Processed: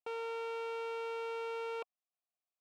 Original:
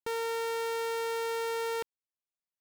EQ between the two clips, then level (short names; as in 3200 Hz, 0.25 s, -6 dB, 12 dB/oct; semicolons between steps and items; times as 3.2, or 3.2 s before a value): vowel filter a; +9.0 dB